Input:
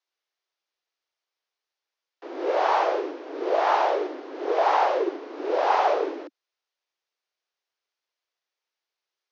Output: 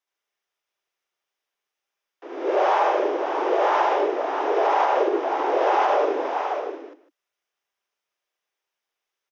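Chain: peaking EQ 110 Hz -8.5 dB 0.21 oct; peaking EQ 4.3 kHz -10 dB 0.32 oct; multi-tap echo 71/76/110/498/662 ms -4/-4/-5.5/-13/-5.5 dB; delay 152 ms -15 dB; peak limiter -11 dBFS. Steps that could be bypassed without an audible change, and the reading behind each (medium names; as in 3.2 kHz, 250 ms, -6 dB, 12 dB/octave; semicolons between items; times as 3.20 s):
peaking EQ 110 Hz: input has nothing below 250 Hz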